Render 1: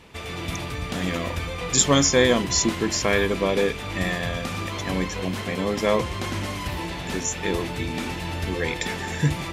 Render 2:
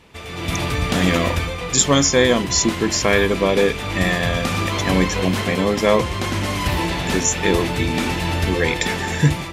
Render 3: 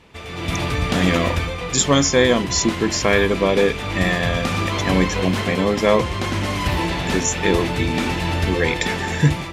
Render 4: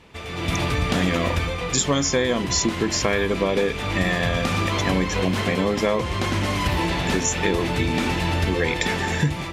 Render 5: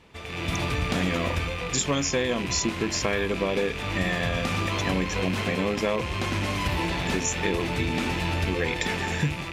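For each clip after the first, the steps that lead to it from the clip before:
level rider gain up to 11 dB; trim -1 dB
treble shelf 8.5 kHz -7.5 dB
compression, threshold -17 dBFS, peak gain reduction 8 dB
rattle on loud lows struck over -31 dBFS, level -19 dBFS; trim -4.5 dB

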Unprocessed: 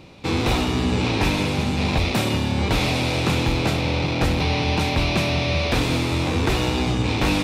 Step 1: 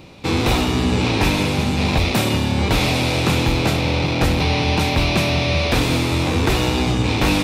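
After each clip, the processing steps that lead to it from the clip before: treble shelf 12 kHz +7.5 dB; trim +3 dB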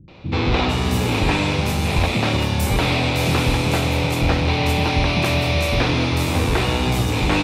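three bands offset in time lows, mids, highs 80/450 ms, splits 260/5000 Hz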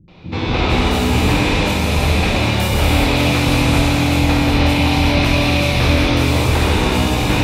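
gated-style reverb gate 420 ms flat, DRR -5 dB; trim -2.5 dB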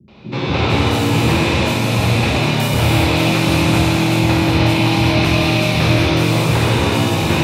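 frequency shift +38 Hz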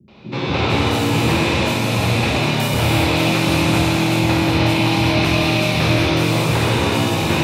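bass shelf 130 Hz -4 dB; trim -1 dB

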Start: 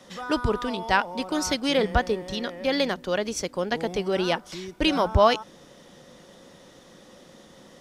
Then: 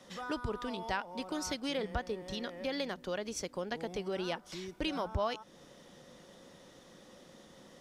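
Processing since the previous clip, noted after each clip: compression 2:1, threshold -31 dBFS, peak gain reduction 10.5 dB; trim -6 dB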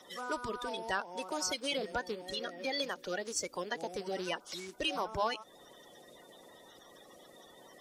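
coarse spectral quantiser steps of 30 dB; tone controls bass -12 dB, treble +5 dB; trim +2 dB

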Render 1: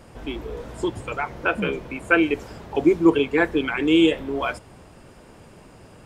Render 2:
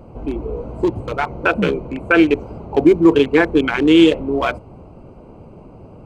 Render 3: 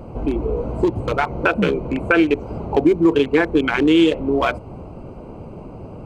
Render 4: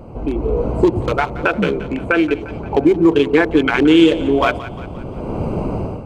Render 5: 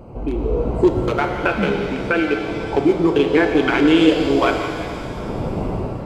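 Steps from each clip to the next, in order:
local Wiener filter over 25 samples; loudness maximiser +9 dB; trim -1 dB
compression 2:1, threshold -23 dBFS, peak gain reduction 9.5 dB; trim +5 dB
level rider gain up to 16 dB; two-band feedback delay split 710 Hz, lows 102 ms, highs 175 ms, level -15 dB; trim -1 dB
pitch-shifted reverb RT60 2.4 s, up +7 st, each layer -8 dB, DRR 4.5 dB; trim -3 dB

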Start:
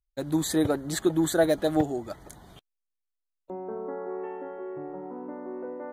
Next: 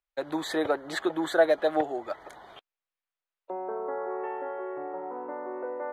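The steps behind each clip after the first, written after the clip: three-band isolator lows -23 dB, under 430 Hz, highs -20 dB, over 3.5 kHz; in parallel at -2 dB: compression, threshold -39 dBFS, peak gain reduction 18.5 dB; on the sum: trim +2.5 dB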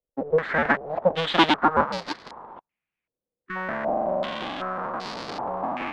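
cycle switcher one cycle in 2, inverted; spectral replace 3.33–3.54 s, 370–1000 Hz before; step-sequenced low-pass 2.6 Hz 500–4600 Hz; trim +1.5 dB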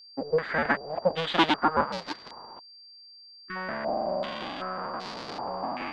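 whistle 4.7 kHz -44 dBFS; trim -4 dB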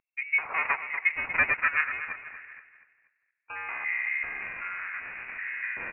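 distance through air 440 m; feedback delay 239 ms, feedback 37%, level -11 dB; frequency inversion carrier 2.7 kHz

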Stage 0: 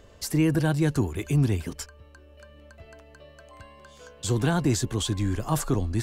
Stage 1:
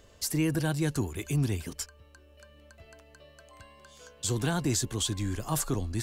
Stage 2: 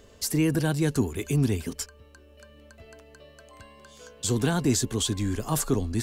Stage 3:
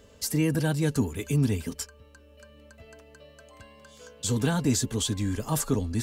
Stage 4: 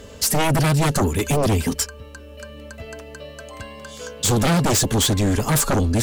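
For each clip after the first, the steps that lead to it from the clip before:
treble shelf 3 kHz +8 dB; trim -5.5 dB
small resonant body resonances 240/420 Hz, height 7 dB; trim +2.5 dB
comb of notches 360 Hz
sine folder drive 12 dB, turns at -12.5 dBFS; trim -2 dB

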